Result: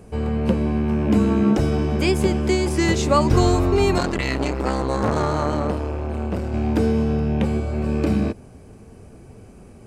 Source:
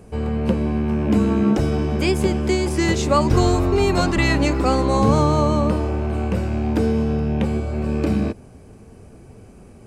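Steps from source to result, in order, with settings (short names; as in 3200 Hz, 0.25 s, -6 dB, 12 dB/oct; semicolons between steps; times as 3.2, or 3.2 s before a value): 3.98–6.54 core saturation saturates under 780 Hz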